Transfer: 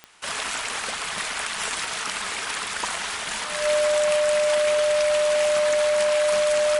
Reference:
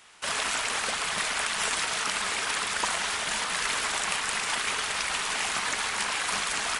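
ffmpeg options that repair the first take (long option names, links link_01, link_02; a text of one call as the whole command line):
ffmpeg -i in.wav -af "adeclick=threshold=4,bandreject=frequency=600:width=30" out.wav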